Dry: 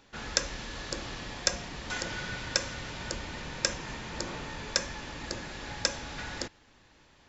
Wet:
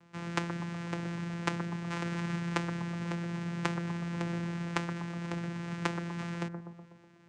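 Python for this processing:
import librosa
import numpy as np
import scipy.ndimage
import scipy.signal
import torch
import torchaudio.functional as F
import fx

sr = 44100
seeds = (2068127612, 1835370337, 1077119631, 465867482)

y = np.r_[np.sort(x[:len(x) // 32 * 32].reshape(-1, 32), axis=1).ravel(), x[len(x) // 32 * 32:]]
y = fx.vocoder(y, sr, bands=4, carrier='saw', carrier_hz=171.0)
y = fx.echo_bbd(y, sr, ms=123, stages=1024, feedback_pct=60, wet_db=-6.5)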